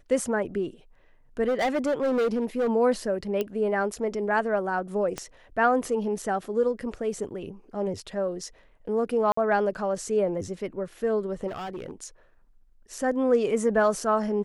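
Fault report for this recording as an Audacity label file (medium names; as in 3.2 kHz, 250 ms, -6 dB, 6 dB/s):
1.470000	2.690000	clipped -21 dBFS
3.410000	3.410000	pop -15 dBFS
5.180000	5.180000	pop -16 dBFS
9.320000	9.370000	dropout 54 ms
11.470000	11.910000	clipped -31.5 dBFS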